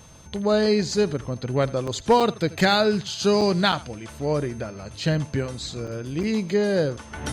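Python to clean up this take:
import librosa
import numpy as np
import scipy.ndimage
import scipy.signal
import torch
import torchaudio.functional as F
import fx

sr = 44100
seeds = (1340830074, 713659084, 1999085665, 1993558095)

y = fx.fix_declip(x, sr, threshold_db=-10.0)
y = fx.notch(y, sr, hz=6300.0, q=30.0)
y = fx.fix_interpolate(y, sr, at_s=(1.87, 2.2, 3.41, 3.72, 5.87, 6.23), length_ms=5.0)
y = fx.fix_echo_inverse(y, sr, delay_ms=81, level_db=-20.0)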